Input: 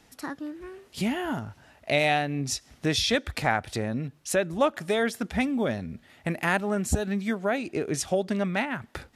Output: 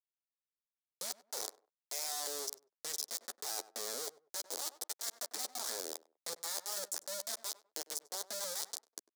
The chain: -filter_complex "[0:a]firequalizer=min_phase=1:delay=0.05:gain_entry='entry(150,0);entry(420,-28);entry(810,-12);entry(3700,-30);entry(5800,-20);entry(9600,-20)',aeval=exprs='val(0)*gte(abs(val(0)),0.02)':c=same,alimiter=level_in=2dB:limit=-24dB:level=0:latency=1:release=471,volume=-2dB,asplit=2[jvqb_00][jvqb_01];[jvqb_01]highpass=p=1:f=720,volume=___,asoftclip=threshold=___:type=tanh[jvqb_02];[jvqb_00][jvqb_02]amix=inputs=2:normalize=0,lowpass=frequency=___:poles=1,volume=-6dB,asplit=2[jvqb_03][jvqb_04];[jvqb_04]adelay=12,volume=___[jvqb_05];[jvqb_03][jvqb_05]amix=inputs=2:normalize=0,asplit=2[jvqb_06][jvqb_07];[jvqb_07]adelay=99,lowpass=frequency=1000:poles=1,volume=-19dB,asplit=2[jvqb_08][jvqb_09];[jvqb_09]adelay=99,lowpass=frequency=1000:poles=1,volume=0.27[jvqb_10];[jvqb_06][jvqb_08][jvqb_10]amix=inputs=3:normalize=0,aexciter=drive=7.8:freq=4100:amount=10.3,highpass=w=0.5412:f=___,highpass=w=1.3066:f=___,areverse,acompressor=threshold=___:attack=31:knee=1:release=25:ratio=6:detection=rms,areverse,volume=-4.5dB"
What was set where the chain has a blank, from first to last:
34dB, -26dB, 4800, -11dB, 390, 390, -37dB